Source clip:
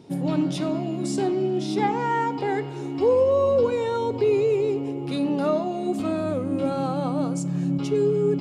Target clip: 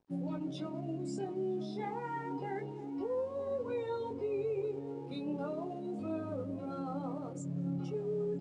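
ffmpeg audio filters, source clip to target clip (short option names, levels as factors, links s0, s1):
-filter_complex "[0:a]afftdn=nr=14:nf=-35,areverse,acompressor=mode=upward:threshold=0.0501:ratio=2.5,areverse,alimiter=limit=0.1:level=0:latency=1:release=14,asplit=2[s0][s1];[s1]adelay=962,lowpass=f=1000:p=1,volume=0.188,asplit=2[s2][s3];[s3]adelay=962,lowpass=f=1000:p=1,volume=0.5,asplit=2[s4][s5];[s5]adelay=962,lowpass=f=1000:p=1,volume=0.5,asplit=2[s6][s7];[s7]adelay=962,lowpass=f=1000:p=1,volume=0.5,asplit=2[s8][s9];[s9]adelay=962,lowpass=f=1000:p=1,volume=0.5[s10];[s0][s2][s4][s6][s8][s10]amix=inputs=6:normalize=0,flanger=delay=17.5:depth=6.5:speed=0.3,aeval=exprs='sgn(val(0))*max(abs(val(0))-0.0015,0)':c=same,aresample=22050,aresample=44100,volume=0.398"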